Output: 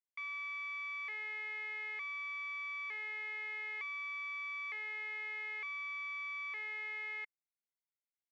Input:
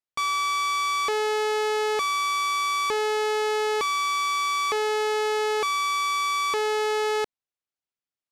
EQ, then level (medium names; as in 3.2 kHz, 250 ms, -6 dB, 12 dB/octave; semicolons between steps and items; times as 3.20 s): band-pass filter 2.1 kHz, Q 13; distance through air 92 m; 0.0 dB